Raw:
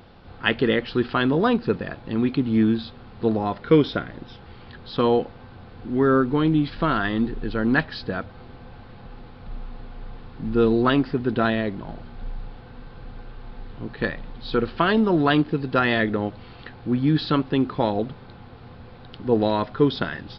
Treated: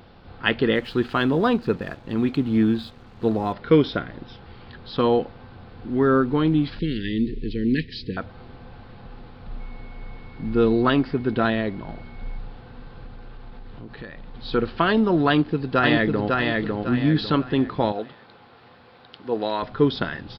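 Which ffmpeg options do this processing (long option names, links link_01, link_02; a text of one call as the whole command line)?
ffmpeg -i in.wav -filter_complex "[0:a]asettb=1/sr,asplit=3[link_01][link_02][link_03];[link_01]atrim=end=0.754[link_04];[link_02]atrim=start=0.75:end=3.53,asetpts=PTS-STARTPTS,afade=type=in:duration=0.004:curve=qsin,afade=type=out:start_time=2.776:duration=0.004:curve=qsin,aeval=exprs='sgn(val(0))*max(abs(val(0))-0.00282,0)':channel_layout=same[link_05];[link_03]atrim=start=3.526[link_06];[link_04][link_05]acrossfade=duration=0.004:curve1=hsin:curve2=qsin[link_07];[link_07][link_06]acrossfade=duration=0.004:curve1=qsin:curve2=hsin,asettb=1/sr,asplit=3[link_08][link_09][link_10];[link_08]atrim=end=6.794[link_11];[link_09]atrim=start=6.79:end=8.17,asetpts=PTS-STARTPTS,afade=type=in:duration=0.004:curve=qsin,afade=type=out:start_time=1.376:duration=0.004:curve=qsin,asuperstop=centerf=940:order=12:qfactor=0.64[link_12];[link_10]atrim=start=8.166[link_13];[link_11][link_12]acrossfade=duration=0.004:curve1=hsin:curve2=qsin[link_14];[link_14][link_13]acrossfade=duration=0.004:curve1=qsin:curve2=hsin,asettb=1/sr,asplit=3[link_15][link_16][link_17];[link_15]atrim=end=9.604[link_18];[link_16]atrim=start=9.6:end=12.38,asetpts=PTS-STARTPTS,afade=type=in:duration=0.004:curve=qsin,afade=type=out:start_time=2.776:duration=0.004:curve=qsin,aeval=exprs='val(0)+0.00251*sin(2*PI*2200*n/s)':channel_layout=same[link_19];[link_17]atrim=start=12.376[link_20];[link_18][link_19]acrossfade=duration=0.004:curve1=hsin:curve2=qsin[link_21];[link_21][link_20]acrossfade=duration=0.004:curve1=qsin:curve2=hsin,asettb=1/sr,asplit=3[link_22][link_23][link_24];[link_22]atrim=end=13.064[link_25];[link_23]atrim=start=13.06:end=14.34,asetpts=PTS-STARTPTS,afade=type=in:duration=0.004:curve=qsin,afade=type=out:start_time=1.276:duration=0.004:curve=qsin,acompressor=threshold=-35dB:ratio=4:attack=3.2:release=140:knee=1:detection=peak[link_26];[link_24]atrim=start=14.336[link_27];[link_25][link_26]acrossfade=duration=0.004:curve1=hsin:curve2=qsin[link_28];[link_28][link_27]acrossfade=duration=0.004:curve1=qsin:curve2=hsin,asplit=2[link_29][link_30];[link_30]afade=type=in:start_time=15.28:duration=0.01,afade=type=out:start_time=16.38:duration=0.01,aecho=0:1:550|1100|1650|2200|2750:0.749894|0.262463|0.091862|0.0321517|0.0112531[link_31];[link_29][link_31]amix=inputs=2:normalize=0,asettb=1/sr,asplit=3[link_32][link_33][link_34];[link_32]atrim=end=17.924[link_35];[link_33]atrim=start=17.92:end=19.63,asetpts=PTS-STARTPTS,afade=type=in:duration=0.004:curve=qsin,afade=type=out:start_time=1.706:duration=0.004:curve=qsin,highpass=frequency=620:poles=1[link_36];[link_34]atrim=start=19.626[link_37];[link_35][link_36]acrossfade=duration=0.004:curve1=hsin:curve2=qsin[link_38];[link_38][link_37]acrossfade=duration=0.004:curve1=qsin:curve2=hsin" out.wav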